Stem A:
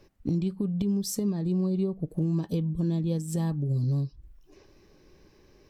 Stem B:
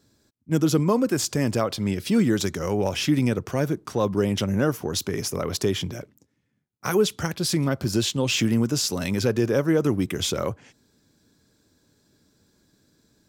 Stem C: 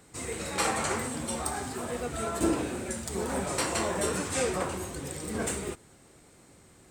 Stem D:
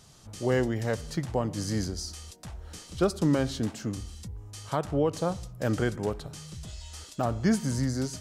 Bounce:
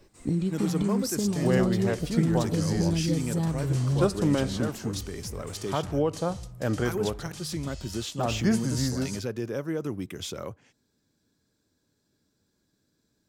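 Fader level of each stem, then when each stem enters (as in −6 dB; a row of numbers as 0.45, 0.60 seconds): +0.5, −10.0, −16.0, 0.0 decibels; 0.00, 0.00, 0.00, 1.00 seconds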